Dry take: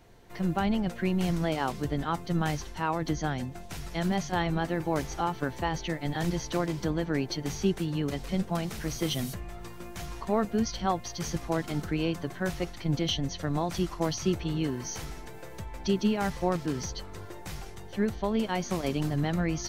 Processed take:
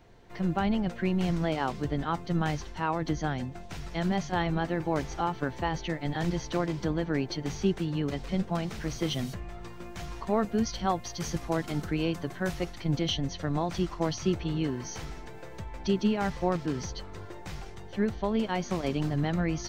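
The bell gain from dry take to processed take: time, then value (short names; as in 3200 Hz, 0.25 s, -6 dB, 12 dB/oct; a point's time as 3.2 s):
bell 12000 Hz 0.96 oct
9.72 s -14 dB
10.75 s -3 dB
12.66 s -3 dB
13.46 s -13.5 dB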